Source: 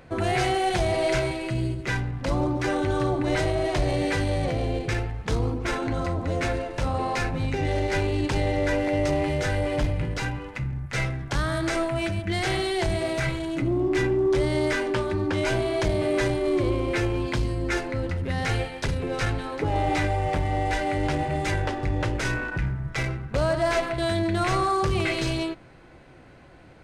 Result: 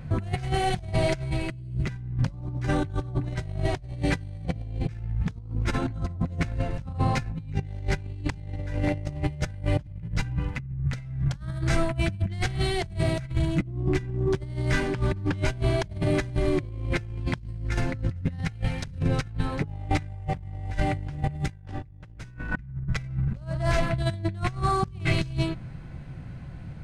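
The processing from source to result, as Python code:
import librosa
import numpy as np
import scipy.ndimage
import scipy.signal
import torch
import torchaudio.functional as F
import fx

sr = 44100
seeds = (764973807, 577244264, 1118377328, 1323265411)

y = fx.echo_thinned(x, sr, ms=111, feedback_pct=79, hz=420.0, wet_db=-16.5, at=(14.44, 19.07), fade=0.02)
y = fx.env_flatten(y, sr, amount_pct=100, at=(21.47, 22.56), fade=0.02)
y = fx.low_shelf_res(y, sr, hz=240.0, db=13.5, q=1.5)
y = fx.over_compress(y, sr, threshold_db=-20.0, ratio=-0.5)
y = F.gain(torch.from_numpy(y), -7.0).numpy()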